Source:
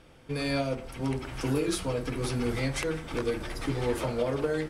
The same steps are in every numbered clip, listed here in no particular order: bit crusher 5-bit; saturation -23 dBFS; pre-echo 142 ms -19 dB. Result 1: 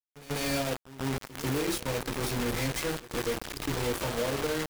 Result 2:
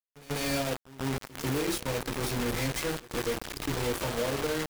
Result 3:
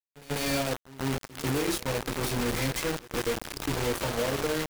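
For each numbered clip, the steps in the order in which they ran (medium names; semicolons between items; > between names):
bit crusher > pre-echo > saturation; bit crusher > saturation > pre-echo; saturation > bit crusher > pre-echo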